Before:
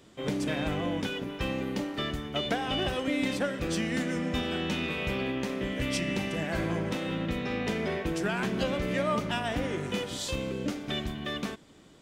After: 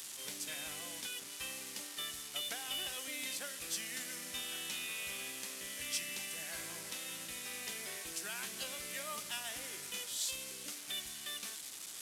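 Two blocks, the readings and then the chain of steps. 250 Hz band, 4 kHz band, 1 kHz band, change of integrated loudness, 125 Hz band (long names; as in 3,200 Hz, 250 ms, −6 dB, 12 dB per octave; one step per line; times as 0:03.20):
−25.0 dB, −4.5 dB, −15.0 dB, −9.0 dB, −27.0 dB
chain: linear delta modulator 64 kbit/s, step −35 dBFS
first-order pre-emphasis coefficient 0.97
level +1.5 dB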